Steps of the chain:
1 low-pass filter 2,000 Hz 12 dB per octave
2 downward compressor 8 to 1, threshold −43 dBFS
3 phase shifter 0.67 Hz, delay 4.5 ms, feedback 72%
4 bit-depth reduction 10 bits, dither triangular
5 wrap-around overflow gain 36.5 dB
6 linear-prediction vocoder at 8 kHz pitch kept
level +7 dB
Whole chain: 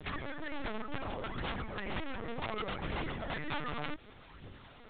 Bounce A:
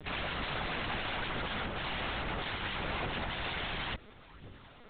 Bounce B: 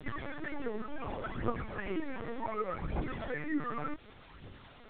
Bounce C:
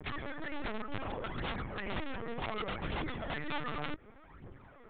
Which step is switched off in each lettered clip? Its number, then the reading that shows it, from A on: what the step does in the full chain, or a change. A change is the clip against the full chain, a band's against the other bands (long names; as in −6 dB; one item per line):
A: 2, average gain reduction 5.5 dB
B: 5, 4 kHz band −10.5 dB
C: 4, distortion level −16 dB